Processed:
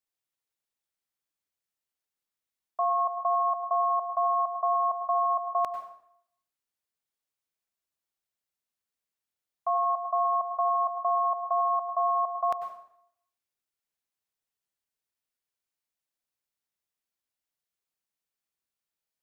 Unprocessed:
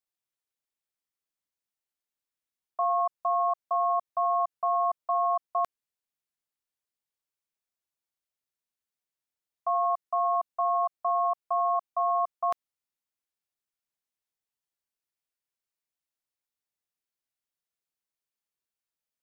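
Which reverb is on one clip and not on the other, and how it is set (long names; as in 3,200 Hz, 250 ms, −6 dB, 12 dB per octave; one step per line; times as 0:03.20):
dense smooth reverb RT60 0.69 s, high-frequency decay 0.85×, pre-delay 85 ms, DRR 7 dB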